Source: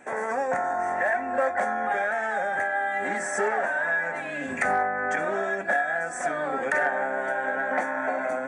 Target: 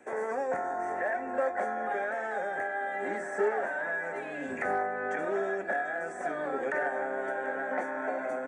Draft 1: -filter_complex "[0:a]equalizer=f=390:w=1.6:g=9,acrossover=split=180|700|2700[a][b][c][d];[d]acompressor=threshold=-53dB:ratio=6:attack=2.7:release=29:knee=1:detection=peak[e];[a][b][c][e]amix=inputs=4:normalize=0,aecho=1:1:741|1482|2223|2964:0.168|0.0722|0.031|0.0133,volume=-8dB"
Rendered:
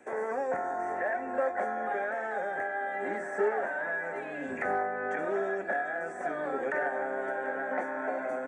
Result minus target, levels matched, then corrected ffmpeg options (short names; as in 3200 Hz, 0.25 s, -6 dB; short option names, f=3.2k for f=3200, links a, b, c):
compressor: peak gain reduction +5 dB
-filter_complex "[0:a]equalizer=f=390:w=1.6:g=9,acrossover=split=180|700|2700[a][b][c][d];[d]acompressor=threshold=-47dB:ratio=6:attack=2.7:release=29:knee=1:detection=peak[e];[a][b][c][e]amix=inputs=4:normalize=0,aecho=1:1:741|1482|2223|2964:0.168|0.0722|0.031|0.0133,volume=-8dB"